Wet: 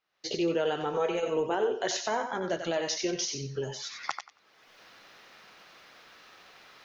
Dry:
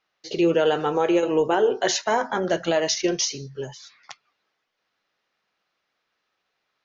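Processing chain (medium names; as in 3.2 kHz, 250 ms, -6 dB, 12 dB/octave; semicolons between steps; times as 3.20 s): recorder AGC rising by 45 dB/s; 0.93–1.37 s: comb 4.5 ms, depth 66%; thinning echo 92 ms, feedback 20%, high-pass 560 Hz, level -6.5 dB; trim -8.5 dB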